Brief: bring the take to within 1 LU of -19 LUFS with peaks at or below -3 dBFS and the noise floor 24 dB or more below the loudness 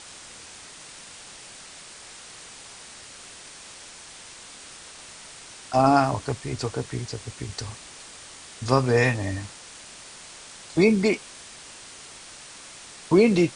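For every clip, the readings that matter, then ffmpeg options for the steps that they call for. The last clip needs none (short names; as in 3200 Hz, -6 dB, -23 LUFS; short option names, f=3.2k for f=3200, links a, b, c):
noise floor -45 dBFS; noise floor target -48 dBFS; loudness -23.5 LUFS; peak -5.5 dBFS; loudness target -19.0 LUFS
-> -af "afftdn=nr=6:nf=-45"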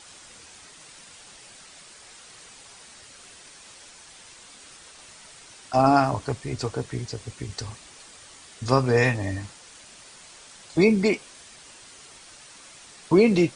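noise floor -48 dBFS; loudness -23.5 LUFS; peak -5.5 dBFS; loudness target -19.0 LUFS
-> -af "volume=4.5dB,alimiter=limit=-3dB:level=0:latency=1"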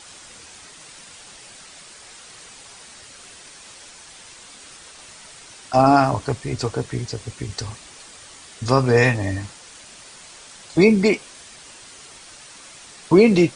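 loudness -19.5 LUFS; peak -3.0 dBFS; noise floor -44 dBFS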